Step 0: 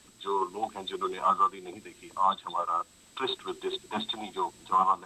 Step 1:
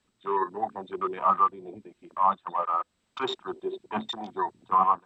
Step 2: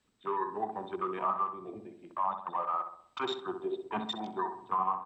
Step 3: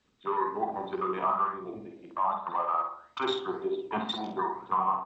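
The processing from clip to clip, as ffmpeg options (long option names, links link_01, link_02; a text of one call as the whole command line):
ffmpeg -i in.wav -af "aemphasis=mode=reproduction:type=50fm,afwtdn=0.01,equalizer=frequency=320:width=4.4:gain=-4,volume=2.5dB" out.wav
ffmpeg -i in.wav -filter_complex "[0:a]acompressor=threshold=-28dB:ratio=3,asplit=2[link_01][link_02];[link_02]adelay=64,lowpass=frequency=1700:poles=1,volume=-7dB,asplit=2[link_03][link_04];[link_04]adelay=64,lowpass=frequency=1700:poles=1,volume=0.53,asplit=2[link_05][link_06];[link_06]adelay=64,lowpass=frequency=1700:poles=1,volume=0.53,asplit=2[link_07][link_08];[link_08]adelay=64,lowpass=frequency=1700:poles=1,volume=0.53,asplit=2[link_09][link_10];[link_10]adelay=64,lowpass=frequency=1700:poles=1,volume=0.53,asplit=2[link_11][link_12];[link_12]adelay=64,lowpass=frequency=1700:poles=1,volume=0.53[link_13];[link_03][link_05][link_07][link_09][link_11][link_13]amix=inputs=6:normalize=0[link_14];[link_01][link_14]amix=inputs=2:normalize=0,volume=-2dB" out.wav
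ffmpeg -i in.wav -filter_complex "[0:a]flanger=delay=9.8:depth=8.6:regen=-78:speed=1.9:shape=sinusoidal,asplit=2[link_01][link_02];[link_02]adelay=49,volume=-7dB[link_03];[link_01][link_03]amix=inputs=2:normalize=0,aresample=16000,aresample=44100,volume=7.5dB" out.wav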